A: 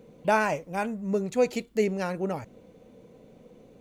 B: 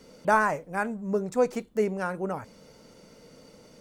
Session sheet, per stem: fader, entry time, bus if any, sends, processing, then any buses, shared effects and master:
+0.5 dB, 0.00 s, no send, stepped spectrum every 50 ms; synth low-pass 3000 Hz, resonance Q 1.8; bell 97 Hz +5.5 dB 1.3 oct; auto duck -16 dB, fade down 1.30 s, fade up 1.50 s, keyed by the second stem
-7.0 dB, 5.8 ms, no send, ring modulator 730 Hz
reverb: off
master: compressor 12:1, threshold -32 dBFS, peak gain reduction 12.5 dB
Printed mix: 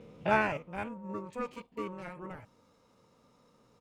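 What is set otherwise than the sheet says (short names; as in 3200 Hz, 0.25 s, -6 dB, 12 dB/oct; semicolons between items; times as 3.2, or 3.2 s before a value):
stem B -7.0 dB -> -13.5 dB; master: missing compressor 12:1, threshold -32 dBFS, peak gain reduction 12.5 dB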